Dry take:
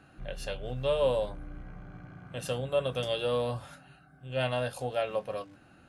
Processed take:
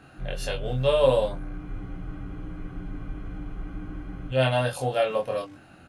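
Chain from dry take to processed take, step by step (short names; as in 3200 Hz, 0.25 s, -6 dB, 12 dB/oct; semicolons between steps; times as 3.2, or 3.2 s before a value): doubler 23 ms -2 dB; spectral freeze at 1.61, 2.70 s; gain +5 dB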